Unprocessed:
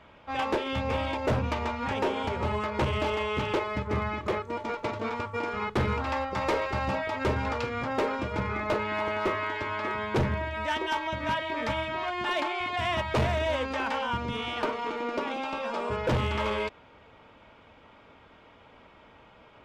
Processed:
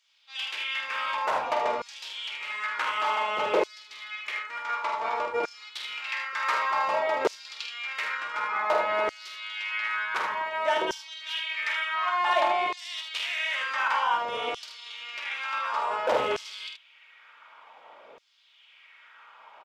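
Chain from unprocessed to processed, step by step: octave divider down 1 oct, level 0 dB; early reflections 48 ms -7 dB, 77 ms -7 dB; LFO high-pass saw down 0.55 Hz 460–5700 Hz

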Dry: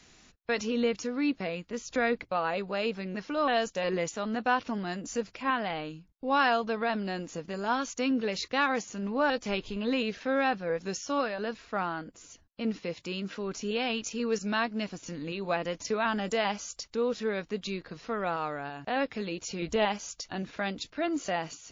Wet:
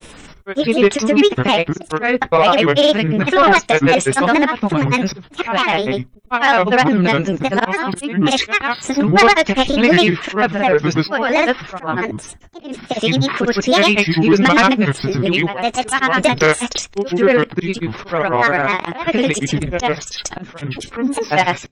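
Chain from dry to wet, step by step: slow attack 355 ms; peaking EQ 4.7 kHz -6.5 dB 1.4 oct; granulator 100 ms, pitch spread up and down by 7 st; on a send at -23 dB: reverberation RT60 0.20 s, pre-delay 3 ms; on the sum: dynamic bell 2.5 kHz, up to +7 dB, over -51 dBFS, Q 0.75; in parallel at -3 dB: compression, threshold -38 dBFS, peak gain reduction 16.5 dB; on the sum: band-stop 4.6 kHz, Q 7.4; sine folder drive 6 dB, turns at -12.5 dBFS; trim +8 dB

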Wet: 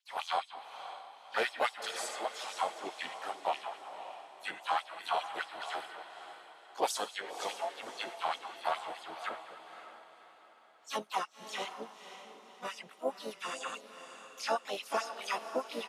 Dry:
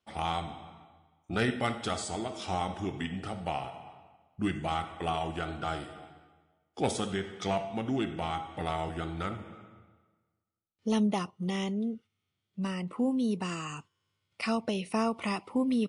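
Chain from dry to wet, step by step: LFO high-pass sine 4.8 Hz 520–6000 Hz; harmony voices -4 st -15 dB, +4 st -6 dB, +5 st -13 dB; echo that smears into a reverb 548 ms, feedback 43%, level -10.5 dB; trim -4 dB

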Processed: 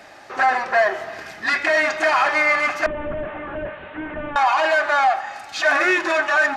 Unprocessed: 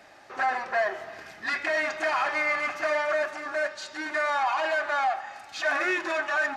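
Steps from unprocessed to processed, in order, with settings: 2.86–4.36 s: one-bit delta coder 16 kbps, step -46.5 dBFS; trim +8.5 dB

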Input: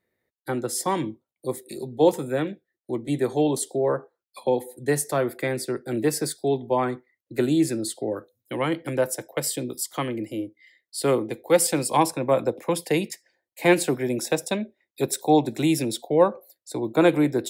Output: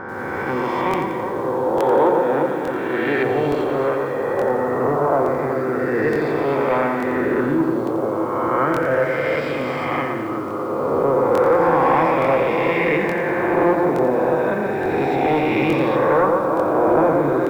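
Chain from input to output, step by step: reverse spectral sustain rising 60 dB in 2.52 s; hum notches 60/120/180/240/300 Hz; on a send: echo whose repeats swap between lows and highs 123 ms, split 2 kHz, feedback 79%, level -5 dB; on the sum: saturation -11.5 dBFS, distortion -16 dB; 1.77–3.23 s: frequency weighting D; LFO low-pass sine 0.34 Hz 1–2.4 kHz; distance through air 120 m; crackling interface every 0.87 s, samples 1024, repeat, from 0.89 s; bit-crushed delay 87 ms, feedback 55%, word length 7-bit, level -11 dB

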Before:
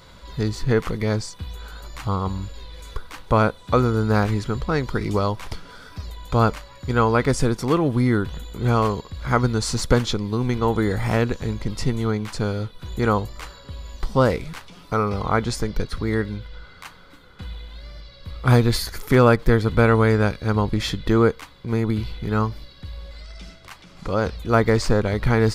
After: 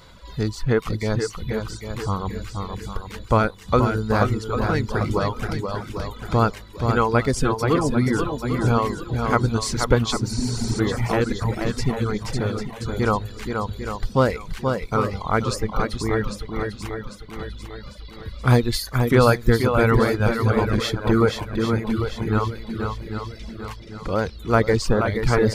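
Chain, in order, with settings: shuffle delay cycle 797 ms, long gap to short 1.5:1, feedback 43%, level -5 dB; spectral replace 10.34–10.77 s, 340–9800 Hz before; reverb removal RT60 0.92 s

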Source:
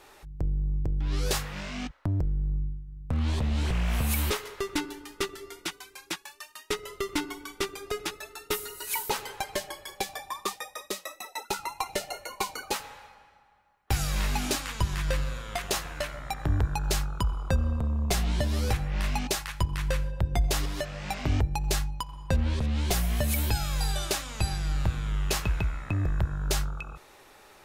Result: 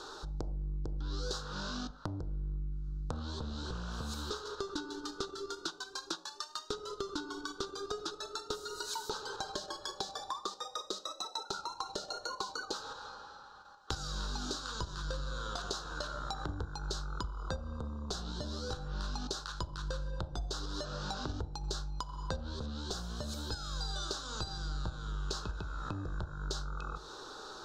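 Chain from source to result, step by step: in parallel at +1 dB: level held to a coarse grid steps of 23 dB; on the sum: FFT filter 150 Hz 0 dB, 450 Hz +8 dB, 670 Hz -3 dB, 1 kHz +6 dB, 1.5 kHz +10 dB, 2.1 kHz -24 dB, 3.9 kHz +12 dB, 6.9 kHz +5 dB, 11 kHz -16 dB; compression 6:1, threshold -37 dBFS, peak gain reduction 21 dB; on a send at -17 dB: high-order bell 670 Hz +12.5 dB 1.1 oct + reverberation RT60 0.50 s, pre-delay 6 ms; on the sum: tape noise reduction on one side only encoder only

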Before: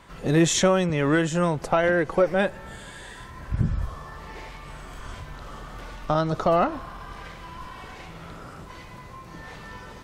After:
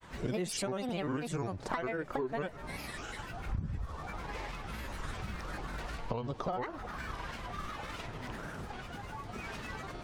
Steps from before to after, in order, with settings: compression 12:1, threshold -31 dBFS, peak gain reduction 16.5 dB; granulator, spray 21 ms, pitch spread up and down by 7 st

